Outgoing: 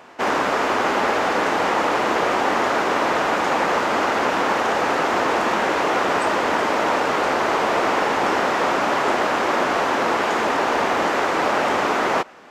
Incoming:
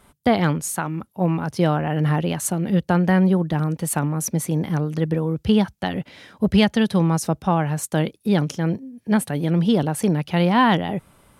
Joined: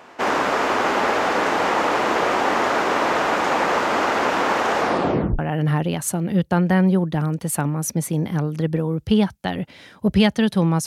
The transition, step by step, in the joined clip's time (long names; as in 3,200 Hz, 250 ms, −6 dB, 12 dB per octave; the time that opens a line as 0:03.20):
outgoing
0:04.79: tape stop 0.60 s
0:05.39: continue with incoming from 0:01.77